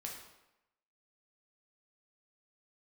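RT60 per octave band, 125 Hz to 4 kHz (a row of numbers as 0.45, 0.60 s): 0.80, 0.85, 0.90, 0.95, 0.85, 0.75 s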